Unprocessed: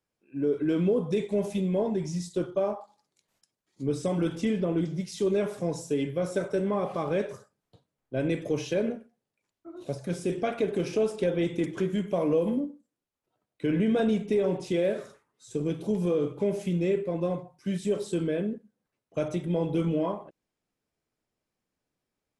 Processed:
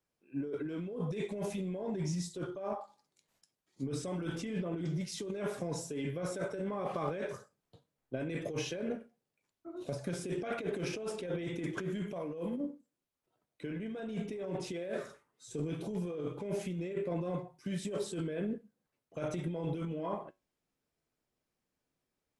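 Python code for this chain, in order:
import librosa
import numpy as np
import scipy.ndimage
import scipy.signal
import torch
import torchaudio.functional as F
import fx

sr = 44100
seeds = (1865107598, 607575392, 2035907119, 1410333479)

y = fx.comb_fb(x, sr, f0_hz=52.0, decay_s=0.25, harmonics='odd', damping=0.0, mix_pct=50)
y = fx.dynamic_eq(y, sr, hz=1600.0, q=1.0, threshold_db=-53.0, ratio=4.0, max_db=4)
y = fx.over_compress(y, sr, threshold_db=-35.0, ratio=-1.0)
y = y * 10.0 ** (-1.5 / 20.0)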